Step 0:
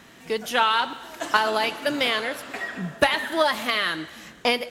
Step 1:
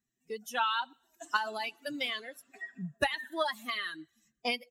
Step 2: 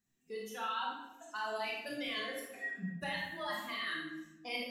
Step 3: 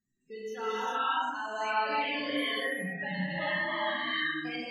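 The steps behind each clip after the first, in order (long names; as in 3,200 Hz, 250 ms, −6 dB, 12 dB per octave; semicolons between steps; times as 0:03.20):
spectral dynamics exaggerated over time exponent 2; dynamic equaliser 420 Hz, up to −5 dB, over −38 dBFS, Q 1.3; level −6 dB
reversed playback; downward compressor 6 to 1, threshold −41 dBFS, peak gain reduction 17.5 dB; reversed playback; convolution reverb RT60 0.95 s, pre-delay 23 ms, DRR −4 dB
spectral peaks only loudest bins 32; reverb whose tail is shaped and stops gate 430 ms rising, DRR −8 dB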